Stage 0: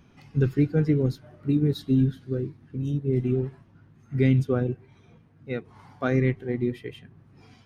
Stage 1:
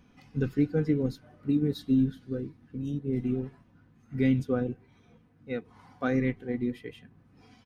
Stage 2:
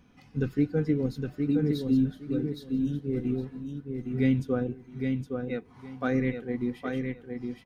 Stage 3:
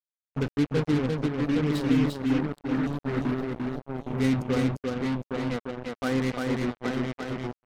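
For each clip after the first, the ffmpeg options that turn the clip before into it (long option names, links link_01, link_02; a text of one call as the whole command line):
ffmpeg -i in.wav -af "aecho=1:1:4:0.42,volume=-4dB" out.wav
ffmpeg -i in.wav -af "aecho=1:1:814|1628|2442:0.562|0.112|0.0225" out.wav
ffmpeg -i in.wav -af "acrusher=bits=4:mix=0:aa=0.5,aecho=1:1:347:0.708" out.wav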